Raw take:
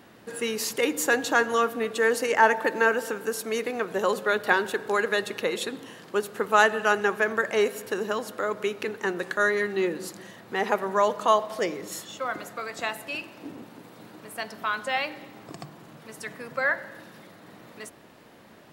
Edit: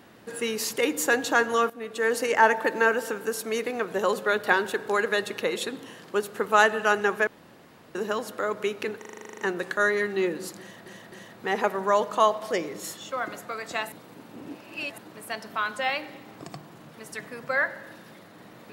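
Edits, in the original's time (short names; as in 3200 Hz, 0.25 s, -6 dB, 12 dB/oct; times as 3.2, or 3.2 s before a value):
1.7–2.2 fade in linear, from -14.5 dB
7.27–7.95 room tone
8.98 stutter 0.04 s, 11 plays
10.2–10.46 loop, 3 plays
13–14.06 reverse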